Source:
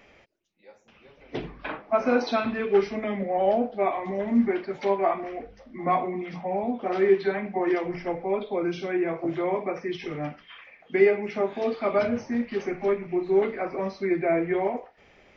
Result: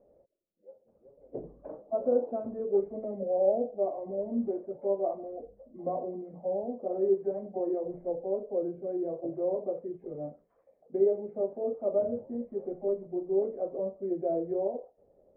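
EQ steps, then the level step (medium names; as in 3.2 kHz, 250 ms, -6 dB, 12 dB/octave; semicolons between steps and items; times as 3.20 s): four-pole ladder low-pass 610 Hz, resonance 65%; 0.0 dB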